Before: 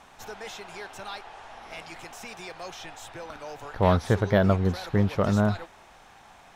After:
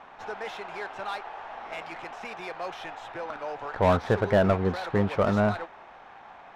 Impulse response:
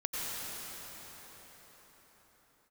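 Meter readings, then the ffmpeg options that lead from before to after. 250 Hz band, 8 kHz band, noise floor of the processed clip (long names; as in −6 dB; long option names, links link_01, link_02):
−2.0 dB, can't be measured, −49 dBFS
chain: -filter_complex "[0:a]asplit=2[link_01][link_02];[link_02]highpass=frequency=720:poles=1,volume=17dB,asoftclip=type=tanh:threshold=-7dB[link_03];[link_01][link_03]amix=inputs=2:normalize=0,lowpass=frequency=1300:poles=1,volume=-6dB,adynamicsmooth=sensitivity=7:basefreq=3400,volume=-2.5dB"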